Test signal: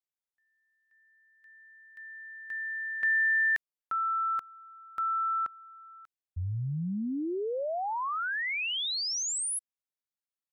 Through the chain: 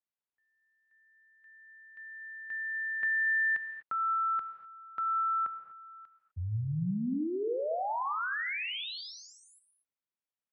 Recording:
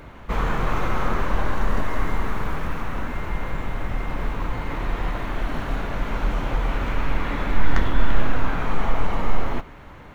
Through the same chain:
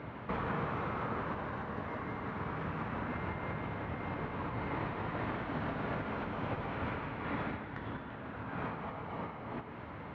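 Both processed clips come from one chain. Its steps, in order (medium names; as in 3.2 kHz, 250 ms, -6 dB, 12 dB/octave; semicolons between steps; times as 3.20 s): compression 6:1, threshold -27 dBFS; high-pass 84 Hz 24 dB/octave; distance through air 310 m; gated-style reverb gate 270 ms flat, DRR 7.5 dB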